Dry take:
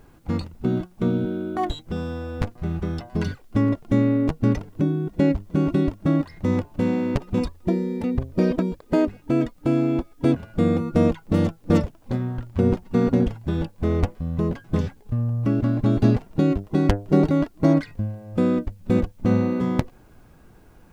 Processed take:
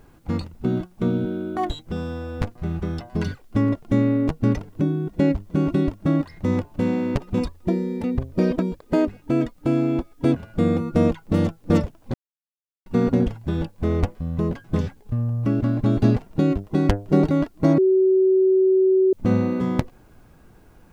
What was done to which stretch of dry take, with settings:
12.14–12.86 s: mute
17.78–19.13 s: bleep 378 Hz -13.5 dBFS

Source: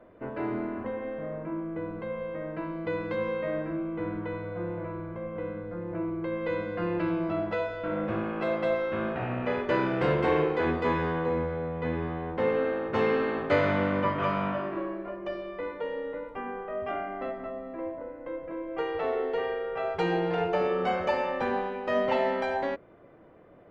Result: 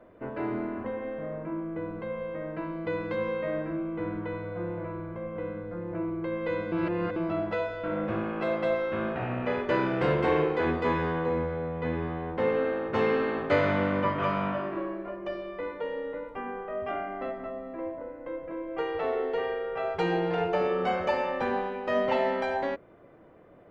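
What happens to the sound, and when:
6.72–7.16 s: reverse

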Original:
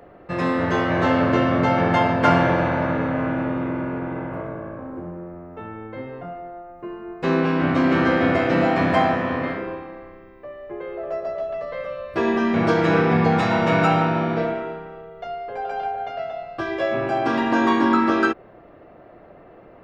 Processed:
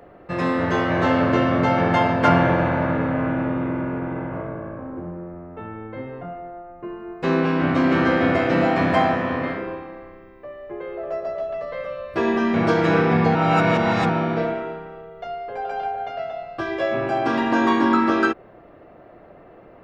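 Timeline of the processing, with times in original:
2.28–7.00 s: tone controls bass +2 dB, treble -6 dB
13.35–14.09 s: reverse

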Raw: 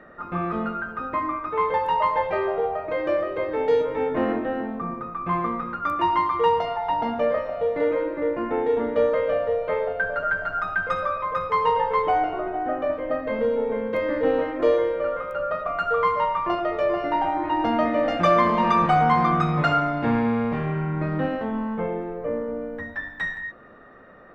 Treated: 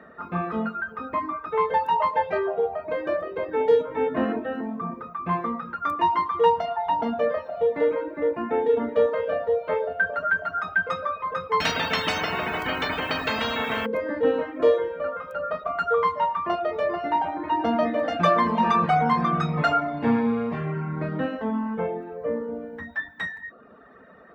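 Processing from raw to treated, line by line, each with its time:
2.37–4.04 s: peaking EQ 5 kHz -2.5 dB 2 oct
11.60–13.86 s: spectrum-flattening compressor 10:1
whole clip: high-pass 54 Hz 24 dB/octave; reverb removal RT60 0.78 s; comb 4.5 ms, depth 39%

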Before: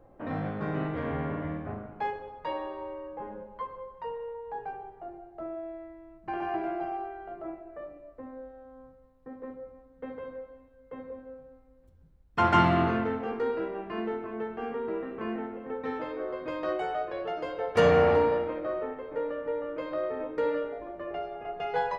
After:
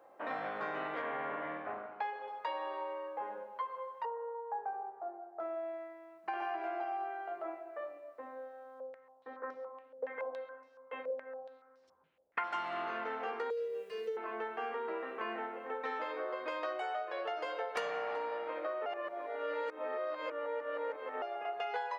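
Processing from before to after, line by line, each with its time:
1.01–2.26 s: low-pass 3.3 kHz -> 4.9 kHz
4.05–5.40 s: low-pass 1.4 kHz 24 dB/octave
8.80–12.44 s: step-sequenced low-pass 7.1 Hz 560–5300 Hz
13.50–14.17 s: FFT filter 170 Hz 0 dB, 310 Hz -30 dB, 460 Hz +10 dB, 690 Hz -24 dB, 1.3 kHz -19 dB, 2.8 kHz -7 dB, 7 kHz +13 dB
18.86–21.22 s: reverse
whole clip: high-pass 700 Hz 12 dB/octave; compression 12:1, threshold -38 dBFS; trim +4 dB

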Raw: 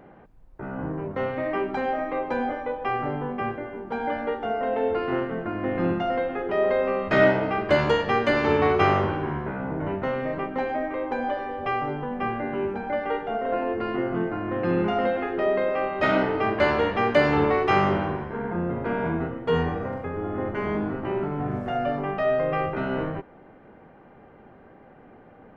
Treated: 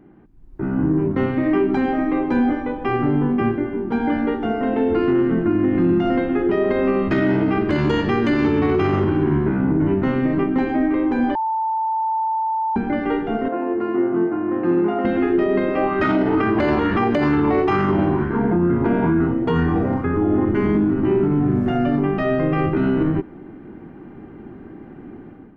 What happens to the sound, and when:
11.35–12.76 s: bleep 887 Hz -21 dBFS
13.48–15.05 s: band-pass filter 800 Hz, Q 0.92
15.77–20.45 s: sweeping bell 2.2 Hz 590–1500 Hz +9 dB
whole clip: resonant low shelf 420 Hz +7 dB, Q 3; peak limiter -14.5 dBFS; level rider gain up to 11.5 dB; trim -6.5 dB

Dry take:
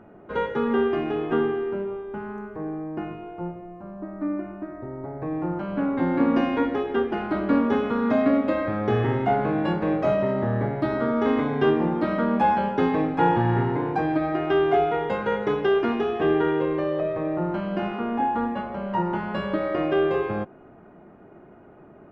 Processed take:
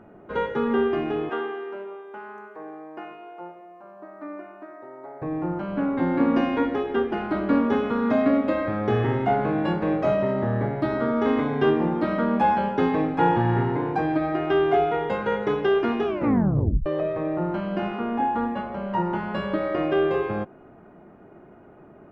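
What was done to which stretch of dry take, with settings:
1.29–5.22 s: high-pass 550 Hz
16.05 s: tape stop 0.81 s

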